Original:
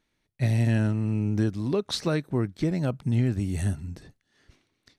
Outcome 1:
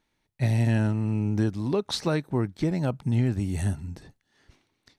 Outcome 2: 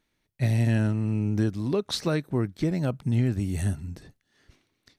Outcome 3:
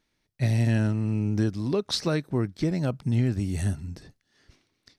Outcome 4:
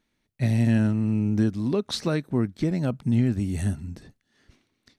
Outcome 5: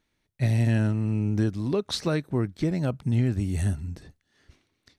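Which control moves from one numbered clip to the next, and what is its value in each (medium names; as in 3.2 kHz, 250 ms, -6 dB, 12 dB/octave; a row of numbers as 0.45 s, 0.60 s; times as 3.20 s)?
peaking EQ, frequency: 870 Hz, 14 kHz, 5.1 kHz, 230 Hz, 74 Hz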